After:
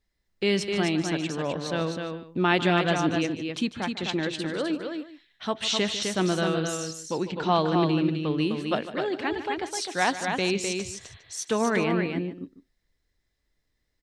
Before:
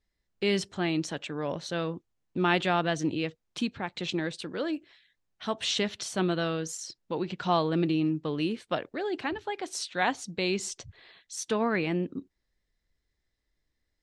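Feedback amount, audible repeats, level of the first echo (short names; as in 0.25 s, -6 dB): no steady repeat, 3, -13.5 dB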